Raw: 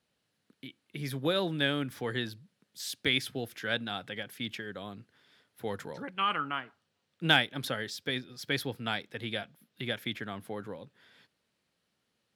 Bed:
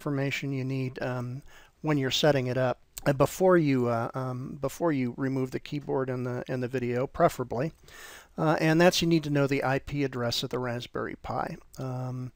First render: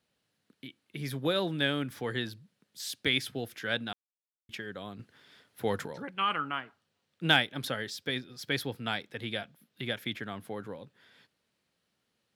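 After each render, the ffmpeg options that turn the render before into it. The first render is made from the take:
-filter_complex "[0:a]asettb=1/sr,asplit=3[a][b][c];[a]atrim=end=4.994[d];[b]atrim=start=4.99:end=5.87,asetpts=PTS-STARTPTS,afade=t=in:d=0.004:c=qsin,afade=t=out:st=0.876:d=0.004:c=qsin,acontrast=35[e];[c]atrim=start=5.866[f];[d][e]acrossfade=d=0.004:c1=hsin:c2=qsin[g];[g][f]acrossfade=d=0.004:c1=qsin:c2=hsin,asplit=3[h][i][j];[h]atrim=end=3.93,asetpts=PTS-STARTPTS,afade=t=out:st=3.926:d=0.004:c=hsin[k];[i]atrim=start=3.93:end=4.49,asetpts=PTS-STARTPTS,volume=0[l];[j]atrim=start=4.49,asetpts=PTS-STARTPTS,afade=t=in:d=0.004:c=hsin[m];[k][l][m]concat=n=3:v=0:a=1"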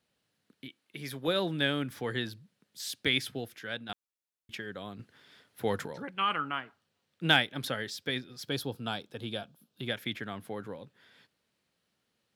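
-filter_complex "[0:a]asettb=1/sr,asplit=3[a][b][c];[a]atrim=end=0.684[d];[b]atrim=start=0.68:end=1.28,asetpts=PTS-STARTPTS,afade=t=in:d=0.004:c=qsin,afade=t=out:st=0.596:d=0.004:c=qsin,lowshelf=f=220:g=-10[e];[c]atrim=start=1.276[f];[d][e]acrossfade=d=0.004:c1=hsin:c2=qsin[g];[g][f]acrossfade=d=0.004:c1=qsin:c2=hsin,asettb=1/sr,asplit=3[h][i][j];[h]atrim=end=8.474[k];[i]atrim=start=8.47:end=9.88,asetpts=PTS-STARTPTS,afade=t=in:d=0.004:c=qsin,afade=t=out:st=1.406:d=0.004:c=qsin,equalizer=f=2k:t=o:w=0.52:g=-14[l];[j]atrim=start=9.876[m];[k][l]acrossfade=d=0.004:c1=hsin:c2=qsin[n];[n][m]acrossfade=d=0.004:c1=qsin:c2=hsin,asplit=2[o][p];[o]atrim=end=3.89,asetpts=PTS-STARTPTS,afade=t=out:st=3.31:d=0.58:c=qua:silence=0.446684[q];[p]atrim=start=3.89,asetpts=PTS-STARTPTS,afade=t=in:d=0.004:c=hsin:silence=0.446684[r];[q][r]concat=n=2:v=0:a=1"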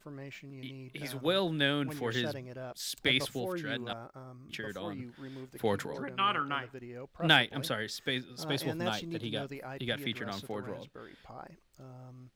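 -filter_complex "[1:a]volume=-16dB[a];[0:a][a]amix=inputs=2:normalize=0"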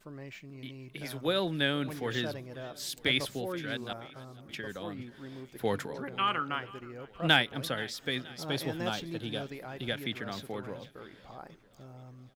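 -af "aecho=1:1:477|954|1431|1908|2385:0.0891|0.0526|0.031|0.0183|0.0108"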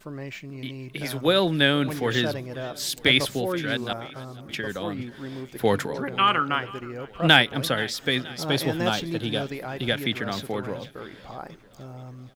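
-af "volume=9dB,alimiter=limit=-1dB:level=0:latency=1"

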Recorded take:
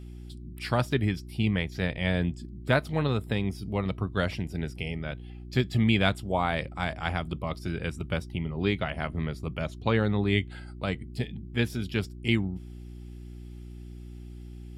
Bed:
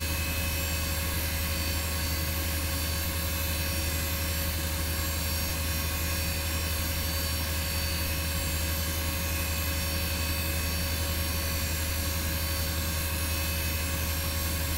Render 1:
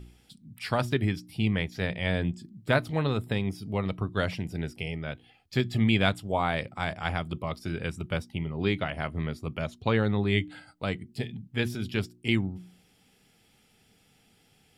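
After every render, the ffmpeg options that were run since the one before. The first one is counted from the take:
-af "bandreject=f=60:t=h:w=4,bandreject=f=120:t=h:w=4,bandreject=f=180:t=h:w=4,bandreject=f=240:t=h:w=4,bandreject=f=300:t=h:w=4,bandreject=f=360:t=h:w=4"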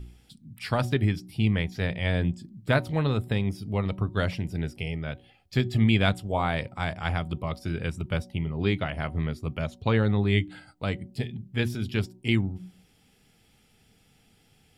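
-af "lowshelf=f=110:g=8,bandreject=f=186.7:t=h:w=4,bandreject=f=373.4:t=h:w=4,bandreject=f=560.1:t=h:w=4,bandreject=f=746.8:t=h:w=4,bandreject=f=933.5:t=h:w=4"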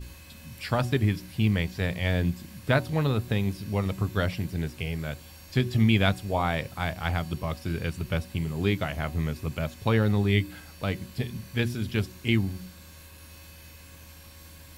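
-filter_complex "[1:a]volume=-18.5dB[a];[0:a][a]amix=inputs=2:normalize=0"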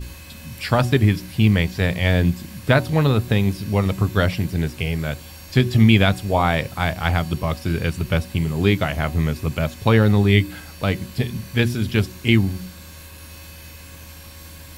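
-af "volume=8dB,alimiter=limit=-2dB:level=0:latency=1"

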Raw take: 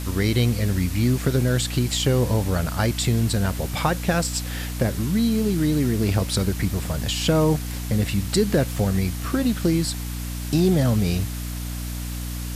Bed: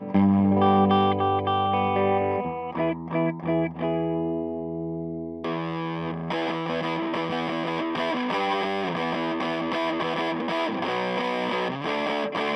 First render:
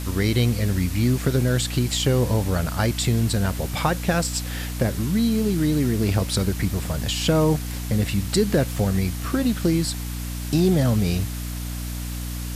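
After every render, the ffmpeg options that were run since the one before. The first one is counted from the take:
-af anull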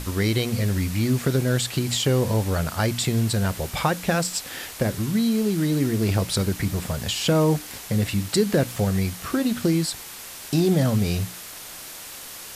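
-af "bandreject=f=60:t=h:w=6,bandreject=f=120:t=h:w=6,bandreject=f=180:t=h:w=6,bandreject=f=240:t=h:w=6,bandreject=f=300:t=h:w=6"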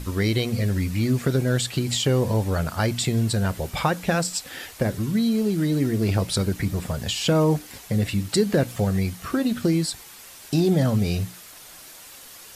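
-af "afftdn=nr=7:nf=-39"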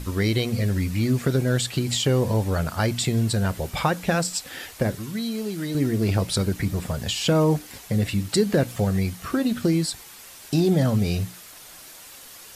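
-filter_complex "[0:a]asettb=1/sr,asplit=3[a][b][c];[a]atrim=end=4.954[d];[b]atrim=start=4.95:end=5.75,asetpts=PTS-STARTPTS,afade=t=in:d=0.004:c=qsin,afade=t=out:st=0.796:d=0.004:c=qsin,lowshelf=f=470:g=-9[e];[c]atrim=start=5.746[f];[d][e]acrossfade=d=0.004:c1=hsin:c2=qsin[g];[g][f]acrossfade=d=0.004:c1=qsin:c2=hsin"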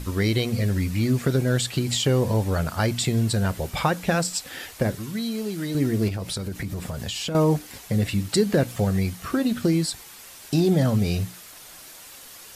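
-filter_complex "[0:a]asettb=1/sr,asplit=3[a][b][c];[a]atrim=end=6.084[d];[b]atrim=start=6.08:end=7.35,asetpts=PTS-STARTPTS,afade=t=in:d=0.004:c=qsin,afade=t=out:st=1.266:d=0.004:c=qsin,acompressor=threshold=-26dB:ratio=6:attack=3.2:release=140:knee=1:detection=peak[e];[c]atrim=start=7.346[f];[d][e]acrossfade=d=0.004:c1=hsin:c2=qsin[g];[g][f]acrossfade=d=0.004:c1=qsin:c2=hsin"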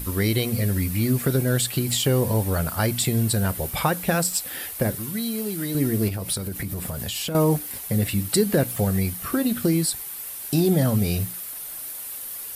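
-af "aexciter=amount=5:drive=4.7:freq=9k"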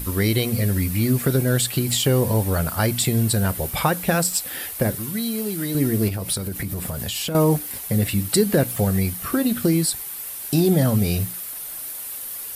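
-af "volume=2dB"

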